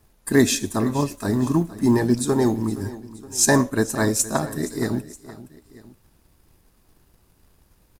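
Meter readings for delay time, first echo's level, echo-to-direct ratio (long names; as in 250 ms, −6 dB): 469 ms, −17.0 dB, −16.0 dB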